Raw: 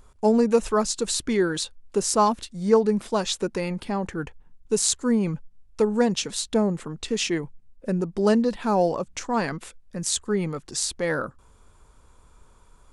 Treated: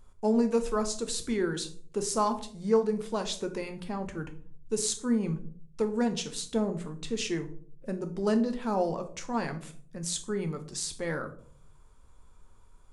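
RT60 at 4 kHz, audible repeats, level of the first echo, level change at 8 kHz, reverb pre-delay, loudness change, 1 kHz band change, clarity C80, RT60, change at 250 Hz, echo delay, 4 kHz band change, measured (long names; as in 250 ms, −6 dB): 0.30 s, no echo audible, no echo audible, −7.5 dB, 5 ms, −6.5 dB, −7.0 dB, 17.5 dB, 0.55 s, −5.5 dB, no echo audible, −7.5 dB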